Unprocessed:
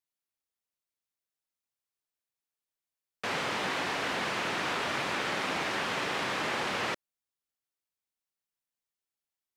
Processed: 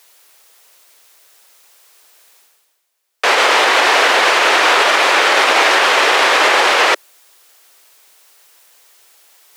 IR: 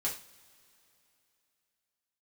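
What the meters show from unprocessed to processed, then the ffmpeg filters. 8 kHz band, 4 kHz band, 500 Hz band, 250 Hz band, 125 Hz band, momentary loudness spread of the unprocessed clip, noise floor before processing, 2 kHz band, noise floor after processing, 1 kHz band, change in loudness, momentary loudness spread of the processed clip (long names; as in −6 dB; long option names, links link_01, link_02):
+20.5 dB, +20.5 dB, +19.5 dB, +10.0 dB, can't be measured, 2 LU, below −85 dBFS, +20.5 dB, −64 dBFS, +20.5 dB, +20.5 dB, 2 LU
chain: -af "highpass=frequency=400:width=0.5412,highpass=frequency=400:width=1.3066,areverse,acompressor=mode=upward:threshold=-53dB:ratio=2.5,areverse,alimiter=level_in=22.5dB:limit=-1dB:release=50:level=0:latency=1,volume=-1dB"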